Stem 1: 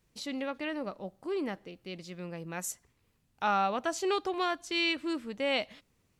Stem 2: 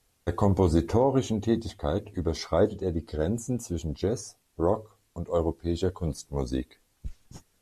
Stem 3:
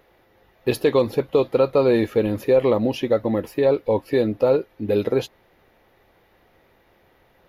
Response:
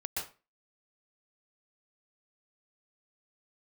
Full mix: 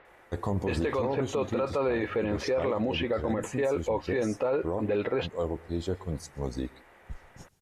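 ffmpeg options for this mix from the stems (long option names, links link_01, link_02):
-filter_complex "[1:a]adelay=50,volume=-4dB,asplit=2[link_01][link_02];[link_02]volume=-23dB[link_03];[2:a]lowpass=2800,equalizer=frequency=1600:width_type=o:width=2.9:gain=11.5,volume=-4.5dB,alimiter=limit=-11.5dB:level=0:latency=1,volume=0dB[link_04];[3:a]atrim=start_sample=2205[link_05];[link_03][link_05]afir=irnorm=-1:irlink=0[link_06];[link_01][link_04][link_06]amix=inputs=3:normalize=0,alimiter=limit=-20dB:level=0:latency=1:release=44"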